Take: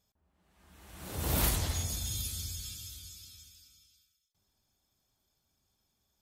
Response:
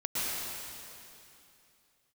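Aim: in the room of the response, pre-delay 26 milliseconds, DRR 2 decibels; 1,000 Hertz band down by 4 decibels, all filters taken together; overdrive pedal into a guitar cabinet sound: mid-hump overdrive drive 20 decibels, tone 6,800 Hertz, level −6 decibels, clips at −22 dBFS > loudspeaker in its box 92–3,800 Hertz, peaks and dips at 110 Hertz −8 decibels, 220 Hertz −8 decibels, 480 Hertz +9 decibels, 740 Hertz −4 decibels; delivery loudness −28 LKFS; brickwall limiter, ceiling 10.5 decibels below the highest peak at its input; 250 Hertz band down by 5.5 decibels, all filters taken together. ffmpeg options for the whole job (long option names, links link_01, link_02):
-filter_complex "[0:a]equalizer=frequency=250:width_type=o:gain=-4.5,equalizer=frequency=1000:width_type=o:gain=-3.5,alimiter=level_in=2.5dB:limit=-24dB:level=0:latency=1,volume=-2.5dB,asplit=2[link_01][link_02];[1:a]atrim=start_sample=2205,adelay=26[link_03];[link_02][link_03]afir=irnorm=-1:irlink=0,volume=-10.5dB[link_04];[link_01][link_04]amix=inputs=2:normalize=0,asplit=2[link_05][link_06];[link_06]highpass=frequency=720:poles=1,volume=20dB,asoftclip=type=tanh:threshold=-22dB[link_07];[link_05][link_07]amix=inputs=2:normalize=0,lowpass=frequency=6800:poles=1,volume=-6dB,highpass=92,equalizer=frequency=110:width_type=q:width=4:gain=-8,equalizer=frequency=220:width_type=q:width=4:gain=-8,equalizer=frequency=480:width_type=q:width=4:gain=9,equalizer=frequency=740:width_type=q:width=4:gain=-4,lowpass=frequency=3800:width=0.5412,lowpass=frequency=3800:width=1.3066,volume=9.5dB"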